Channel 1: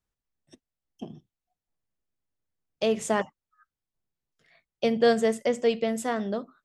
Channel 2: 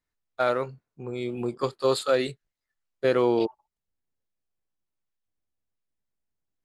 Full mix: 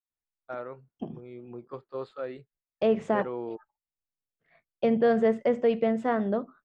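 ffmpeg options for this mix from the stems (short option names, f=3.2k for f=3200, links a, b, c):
-filter_complex "[0:a]alimiter=limit=-16.5dB:level=0:latency=1:release=32,agate=range=-33dB:threshold=-59dB:ratio=3:detection=peak,volume=2.5dB[a];[1:a]adelay=100,volume=-12.5dB[b];[a][b]amix=inputs=2:normalize=0,lowpass=1.8k"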